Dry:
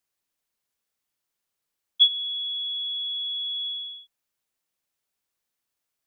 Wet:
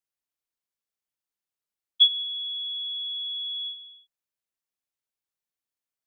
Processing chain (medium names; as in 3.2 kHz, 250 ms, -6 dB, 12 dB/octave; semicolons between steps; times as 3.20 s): gate -31 dBFS, range -10 dB